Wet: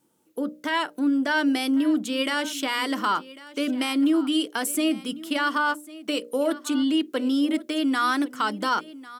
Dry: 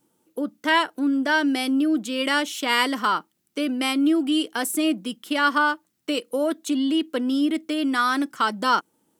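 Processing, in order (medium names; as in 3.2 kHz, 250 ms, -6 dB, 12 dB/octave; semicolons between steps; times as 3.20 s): hum notches 60/120/180/240/300/360/420/480/540/600 Hz; peak limiter -14.5 dBFS, peak gain reduction 8 dB; wow and flutter 21 cents; on a send: delay 1098 ms -18.5 dB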